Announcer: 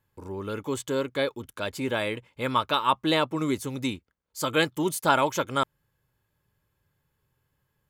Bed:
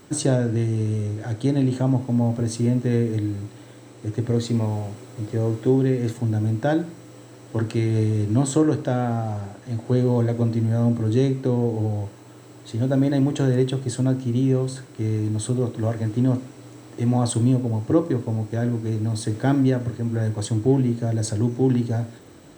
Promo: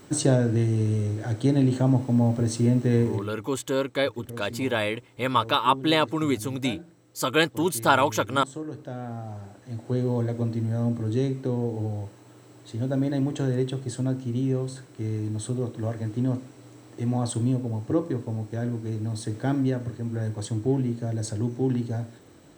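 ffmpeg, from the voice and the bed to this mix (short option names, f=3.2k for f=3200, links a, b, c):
-filter_complex "[0:a]adelay=2800,volume=2dB[a];[1:a]volume=10.5dB,afade=t=out:st=3.02:d=0.29:silence=0.158489,afade=t=in:st=8.63:d=1.45:silence=0.281838[b];[a][b]amix=inputs=2:normalize=0"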